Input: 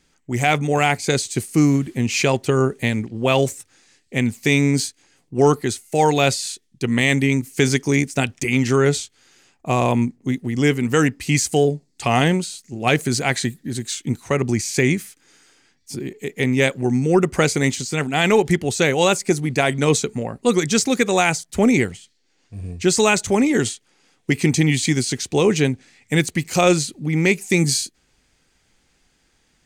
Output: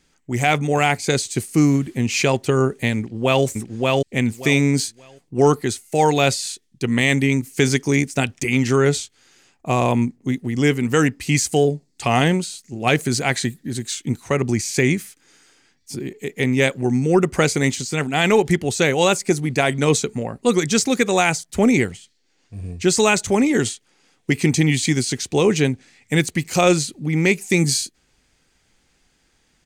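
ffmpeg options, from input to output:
-filter_complex "[0:a]asplit=2[a][b];[b]afade=t=in:st=2.97:d=0.01,afade=t=out:st=3.44:d=0.01,aecho=0:1:580|1160|1740:0.841395|0.168279|0.0336558[c];[a][c]amix=inputs=2:normalize=0"

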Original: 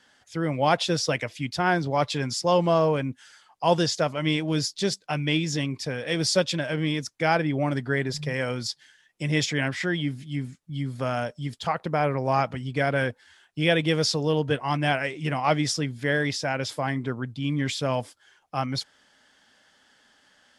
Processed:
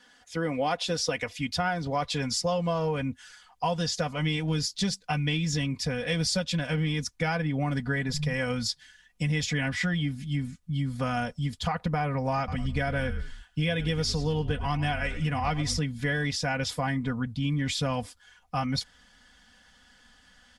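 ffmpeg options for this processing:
-filter_complex "[0:a]asettb=1/sr,asplit=3[a][b][c];[a]atrim=end=12.374[d];[b]atrim=start=12.37:end=15.79,asetpts=PTS-STARTPTS,afade=t=in:d=0.004:c=qsin,afade=t=out:st=3.416:d=0.004:c=qsin,asplit=4[e][f][g][h];[f]adelay=104,afreqshift=-54,volume=-16dB[i];[g]adelay=208,afreqshift=-108,volume=-25.6dB[j];[h]adelay=312,afreqshift=-162,volume=-35.3dB[k];[e][i][j][k]amix=inputs=4:normalize=0,atrim=end_sample=150822[l];[c]atrim=start=15.786[m];[d][l]acrossfade=d=0.004:c1=hsin:c2=qsin[n];[n][m]acrossfade=d=0.004:c1=qsin:c2=hsin,aecho=1:1:4.1:0.72,asubboost=boost=11:cutoff=100,acompressor=threshold=-24dB:ratio=10"

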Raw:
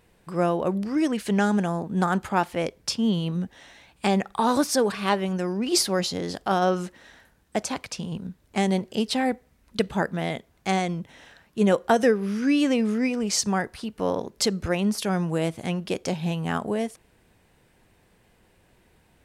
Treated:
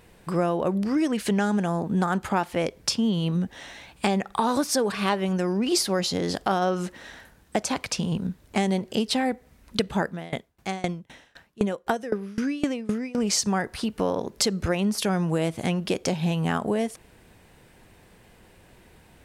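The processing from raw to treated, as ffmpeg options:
-filter_complex "[0:a]asettb=1/sr,asplit=3[a][b][c];[a]atrim=end=10.074[d];[b]atrim=start=10.07:end=13.18,asetpts=PTS-STARTPTS,afade=t=in:d=0.004:c=qsin,afade=t=out:st=3.106:d=0.004:c=qsin,aeval=exprs='val(0)*pow(10,-25*if(lt(mod(3.9*n/s,1),2*abs(3.9)/1000),1-mod(3.9*n/s,1)/(2*abs(3.9)/1000),(mod(3.9*n/s,1)-2*abs(3.9)/1000)/(1-2*abs(3.9)/1000))/20)':c=same[e];[c]atrim=start=13.176[f];[d][e]acrossfade=d=0.004:c1=hsin:c2=qsin[g];[g][f]acrossfade=d=0.004:c1=qsin:c2=hsin,acompressor=threshold=-30dB:ratio=3,volume=7dB"

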